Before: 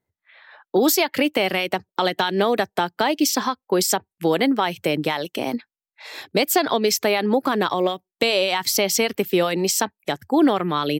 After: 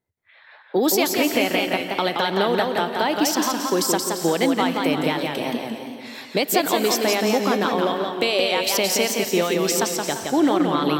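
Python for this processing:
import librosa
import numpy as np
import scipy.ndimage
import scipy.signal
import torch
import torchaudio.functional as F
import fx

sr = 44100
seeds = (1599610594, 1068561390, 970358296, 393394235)

y = fx.rev_gated(x, sr, seeds[0], gate_ms=440, shape='rising', drr_db=9.0)
y = fx.echo_warbled(y, sr, ms=173, feedback_pct=42, rate_hz=2.8, cents=106, wet_db=-4)
y = y * 10.0 ** (-2.0 / 20.0)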